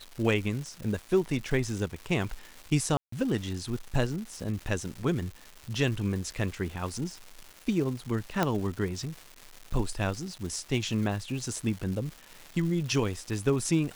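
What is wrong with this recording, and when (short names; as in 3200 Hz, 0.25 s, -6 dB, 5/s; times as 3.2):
crackle 440/s -37 dBFS
2.97–3.12 gap 0.154 s
8.43 pop -11 dBFS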